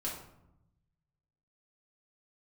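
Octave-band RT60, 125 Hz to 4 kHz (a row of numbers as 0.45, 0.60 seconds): 1.7, 1.3, 0.85, 0.80, 0.60, 0.45 seconds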